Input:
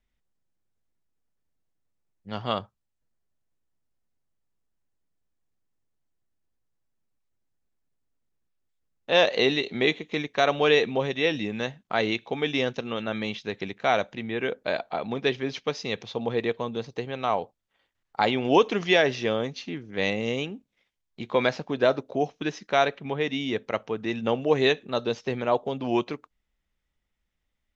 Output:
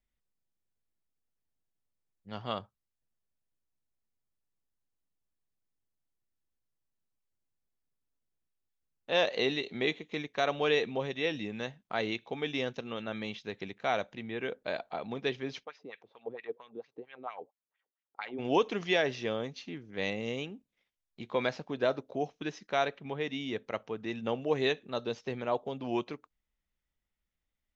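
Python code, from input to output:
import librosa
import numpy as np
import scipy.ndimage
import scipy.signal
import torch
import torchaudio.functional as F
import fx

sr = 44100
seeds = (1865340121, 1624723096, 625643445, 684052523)

y = fx.filter_lfo_bandpass(x, sr, shape='sine', hz=4.4, low_hz=300.0, high_hz=2500.0, q=2.8, at=(15.63, 18.38), fade=0.02)
y = F.gain(torch.from_numpy(y), -7.5).numpy()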